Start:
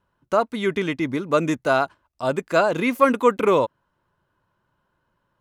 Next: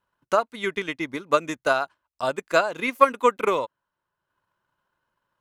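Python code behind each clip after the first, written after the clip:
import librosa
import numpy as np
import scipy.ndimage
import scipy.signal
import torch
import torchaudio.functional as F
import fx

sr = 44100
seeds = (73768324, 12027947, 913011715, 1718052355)

y = fx.low_shelf(x, sr, hz=490.0, db=-10.5)
y = fx.transient(y, sr, attack_db=7, sustain_db=-5)
y = F.gain(torch.from_numpy(y), -2.5).numpy()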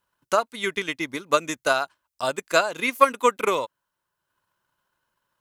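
y = fx.high_shelf(x, sr, hz=3500.0, db=10.5)
y = F.gain(torch.from_numpy(y), -1.0).numpy()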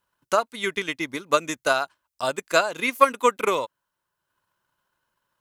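y = x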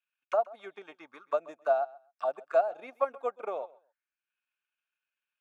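y = fx.notch_comb(x, sr, f0_hz=1000.0)
y = fx.auto_wah(y, sr, base_hz=710.0, top_hz=2500.0, q=6.1, full_db=-24.0, direction='down')
y = fx.echo_feedback(y, sr, ms=131, feedback_pct=17, wet_db=-21)
y = F.gain(torch.from_numpy(y), 2.0).numpy()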